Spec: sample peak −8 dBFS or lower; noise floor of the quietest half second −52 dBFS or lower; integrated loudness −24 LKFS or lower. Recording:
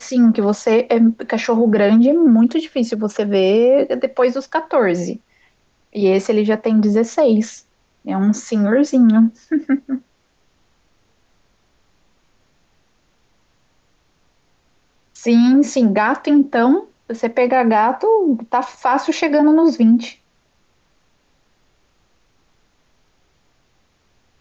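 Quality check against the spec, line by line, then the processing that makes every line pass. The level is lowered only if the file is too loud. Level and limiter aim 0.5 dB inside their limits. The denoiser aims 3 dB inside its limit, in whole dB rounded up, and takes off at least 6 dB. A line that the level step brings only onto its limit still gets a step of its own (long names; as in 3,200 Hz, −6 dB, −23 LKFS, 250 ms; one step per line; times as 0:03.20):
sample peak −6.0 dBFS: out of spec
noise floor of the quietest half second −61 dBFS: in spec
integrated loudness −15.5 LKFS: out of spec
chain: level −9 dB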